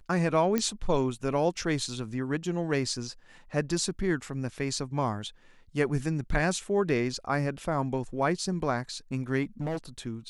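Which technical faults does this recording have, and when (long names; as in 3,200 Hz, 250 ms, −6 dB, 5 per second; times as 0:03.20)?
0:00.58: click −13 dBFS
0:09.43–0:09.77: clipping −28 dBFS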